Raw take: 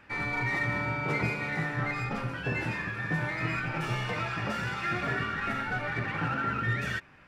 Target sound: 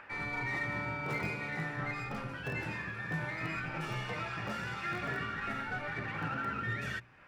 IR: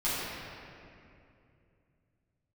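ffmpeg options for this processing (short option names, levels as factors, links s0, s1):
-filter_complex "[0:a]bandreject=f=60:t=h:w=6,bandreject=f=120:t=h:w=6,bandreject=f=180:t=h:w=6,bandreject=f=240:t=h:w=6,bandreject=f=300:t=h:w=6,acrossover=split=270|390|2600[s0][s1][s2][s3];[s1]aeval=exprs='(mod(79.4*val(0)+1,2)-1)/79.4':c=same[s4];[s2]acompressor=mode=upward:threshold=0.0126:ratio=2.5[s5];[s0][s4][s5][s3]amix=inputs=4:normalize=0,volume=0.531"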